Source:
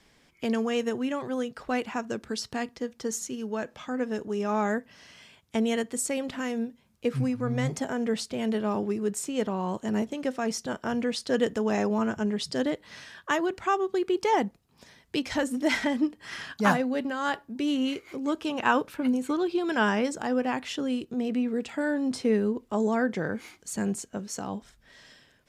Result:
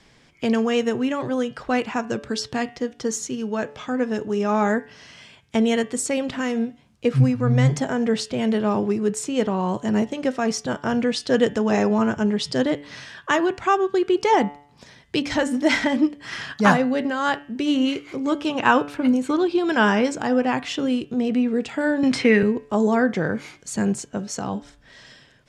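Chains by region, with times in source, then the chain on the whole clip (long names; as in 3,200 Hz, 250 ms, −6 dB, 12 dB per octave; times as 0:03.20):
0:22.03–0:22.43: parametric band 2,100 Hz +14.5 dB 1.2 octaves + multiband upward and downward compressor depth 40%
whole clip: low-pass filter 8,000 Hz 12 dB per octave; parametric band 130 Hz +7 dB 0.33 octaves; hum removal 144.3 Hz, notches 25; level +6.5 dB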